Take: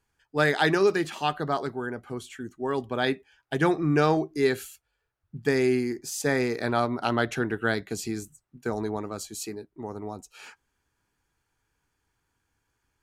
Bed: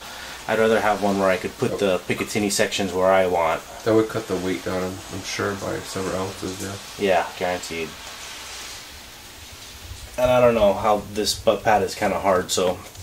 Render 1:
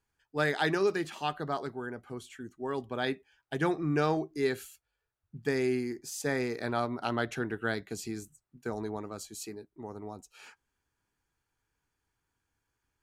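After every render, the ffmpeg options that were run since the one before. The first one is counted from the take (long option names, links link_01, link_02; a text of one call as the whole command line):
ffmpeg -i in.wav -af "volume=-6dB" out.wav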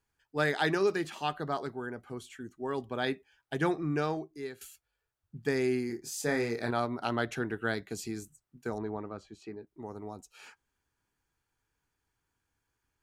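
ffmpeg -i in.wav -filter_complex "[0:a]asettb=1/sr,asplit=3[link_01][link_02][link_03];[link_01]atrim=end=5.874[link_04];[link_02]atrim=start=5.87:end=6.71,asetpts=PTS-STARTPTS,afade=type=in:duration=0.004:curve=qsin,afade=type=out:start_time=0.836:duration=0.004:curve=qsin,asplit=2[link_05][link_06];[link_06]adelay=26,volume=-6dB[link_07];[link_05][link_07]amix=inputs=2:normalize=0,atrim=end_sample=37044[link_08];[link_03]atrim=start=6.706[link_09];[link_04][link_08]acrossfade=duration=0.004:curve1=hsin:curve2=qsin[link_10];[link_10][link_09]acrossfade=duration=0.004:curve1=qsin:curve2=hsin,asettb=1/sr,asplit=3[link_11][link_12][link_13];[link_11]atrim=end=8.784[link_14];[link_12]atrim=start=8.78:end=9.67,asetpts=PTS-STARTPTS,afade=type=in:duration=0.004:curve=qsin,afade=type=out:start_time=0.886:duration=0.004:curve=qsin,lowpass=2300[link_15];[link_13]atrim=start=9.666[link_16];[link_14][link_15]acrossfade=duration=0.004:curve1=hsin:curve2=qsin[link_17];[link_17][link_16]acrossfade=duration=0.004:curve1=qsin:curve2=hsin,asplit=2[link_18][link_19];[link_18]atrim=end=4.61,asetpts=PTS-STARTPTS,afade=type=out:start_time=3.68:duration=0.93:silence=0.158489[link_20];[link_19]atrim=start=4.61,asetpts=PTS-STARTPTS,afade=type=in:duration=0.004:curve=hsin:silence=0.158489[link_21];[link_20][link_21]concat=n=2:v=0:a=1" out.wav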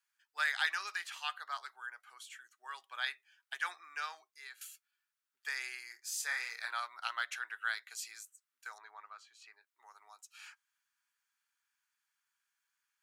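ffmpeg -i in.wav -af "highpass=frequency=1200:width=0.5412,highpass=frequency=1200:width=1.3066" out.wav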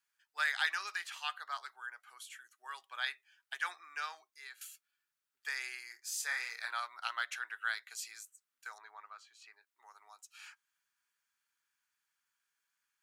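ffmpeg -i in.wav -filter_complex "[0:a]asettb=1/sr,asplit=3[link_01][link_02][link_03];[link_01]atrim=end=2.084[link_04];[link_02]atrim=start=2.08:end=2.79,asetpts=PTS-STARTPTS,afade=type=in:duration=0.004:curve=qsin,afade=type=out:start_time=0.706:duration=0.004:curve=qsin,equalizer=frequency=11000:width=2.6:gain=7.5[link_05];[link_03]atrim=start=2.786[link_06];[link_04][link_05]acrossfade=duration=0.004:curve1=hsin:curve2=qsin[link_07];[link_07][link_06]acrossfade=duration=0.004:curve1=qsin:curve2=hsin" out.wav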